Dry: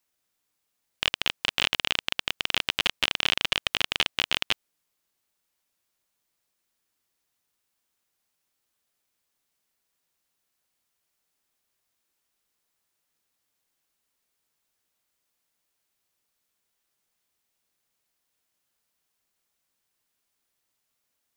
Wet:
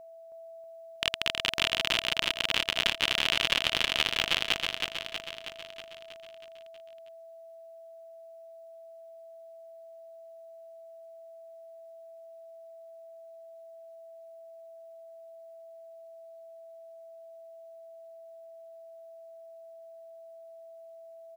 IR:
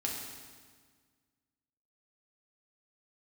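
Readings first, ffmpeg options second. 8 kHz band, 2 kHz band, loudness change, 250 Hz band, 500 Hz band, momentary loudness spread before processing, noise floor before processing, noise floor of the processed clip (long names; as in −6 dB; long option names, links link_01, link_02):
−0.5 dB, −0.5 dB, −1.5 dB, 0.0 dB, +5.5 dB, 5 LU, −79 dBFS, −49 dBFS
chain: -af "aeval=exprs='val(0)+0.00631*sin(2*PI*660*n/s)':channel_layout=same,aecho=1:1:320|640|960|1280|1600|1920|2240|2560:0.631|0.366|0.212|0.123|0.0714|0.0414|0.024|0.0139,volume=-2.5dB"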